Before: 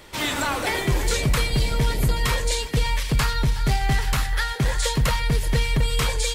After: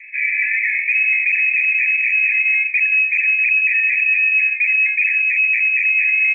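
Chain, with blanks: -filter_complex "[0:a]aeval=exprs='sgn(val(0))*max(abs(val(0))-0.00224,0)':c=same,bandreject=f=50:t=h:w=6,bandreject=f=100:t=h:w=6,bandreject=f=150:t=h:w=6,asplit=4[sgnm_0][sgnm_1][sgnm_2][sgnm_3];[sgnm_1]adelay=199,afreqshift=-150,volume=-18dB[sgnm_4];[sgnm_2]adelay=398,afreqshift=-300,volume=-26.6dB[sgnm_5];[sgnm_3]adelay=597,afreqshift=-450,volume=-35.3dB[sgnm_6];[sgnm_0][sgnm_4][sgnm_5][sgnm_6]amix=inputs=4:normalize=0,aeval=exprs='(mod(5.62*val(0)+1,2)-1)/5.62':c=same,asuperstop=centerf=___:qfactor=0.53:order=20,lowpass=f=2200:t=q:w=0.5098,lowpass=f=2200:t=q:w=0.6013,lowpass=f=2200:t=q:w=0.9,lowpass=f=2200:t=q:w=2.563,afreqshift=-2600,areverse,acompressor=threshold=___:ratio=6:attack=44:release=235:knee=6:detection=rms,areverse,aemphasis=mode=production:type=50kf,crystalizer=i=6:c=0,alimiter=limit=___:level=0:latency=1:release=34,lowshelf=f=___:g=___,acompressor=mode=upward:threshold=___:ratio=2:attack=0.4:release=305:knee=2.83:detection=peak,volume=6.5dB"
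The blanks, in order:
2000, -31dB, -15.5dB, 140, 10.5, -41dB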